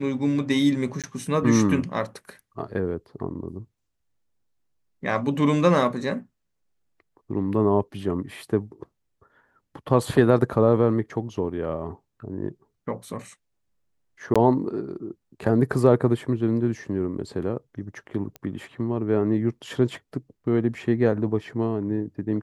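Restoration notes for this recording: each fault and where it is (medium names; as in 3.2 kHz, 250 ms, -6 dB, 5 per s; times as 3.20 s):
1.02–1.04 s: dropout 17 ms
14.34–14.36 s: dropout 16 ms
18.36 s: pop -21 dBFS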